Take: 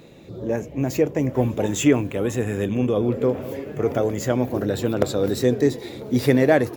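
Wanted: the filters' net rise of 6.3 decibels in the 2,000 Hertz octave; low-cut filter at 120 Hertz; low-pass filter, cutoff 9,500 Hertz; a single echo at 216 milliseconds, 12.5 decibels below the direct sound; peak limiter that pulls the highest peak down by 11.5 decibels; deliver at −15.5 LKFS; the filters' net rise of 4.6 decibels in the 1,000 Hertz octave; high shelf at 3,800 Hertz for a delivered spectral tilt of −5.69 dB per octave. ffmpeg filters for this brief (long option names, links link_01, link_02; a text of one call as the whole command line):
ffmpeg -i in.wav -af "highpass=120,lowpass=9500,equalizer=frequency=1000:width_type=o:gain=5.5,equalizer=frequency=2000:width_type=o:gain=7,highshelf=frequency=3800:gain=-5,alimiter=limit=-12.5dB:level=0:latency=1,aecho=1:1:216:0.237,volume=8.5dB" out.wav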